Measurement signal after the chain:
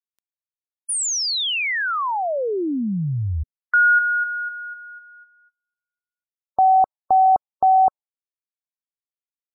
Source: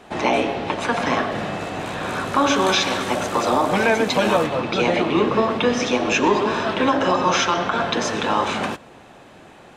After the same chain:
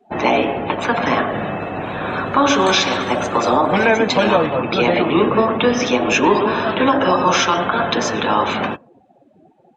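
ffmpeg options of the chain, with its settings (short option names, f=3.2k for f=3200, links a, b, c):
-af "afftdn=nr=29:nf=-35,volume=3.5dB"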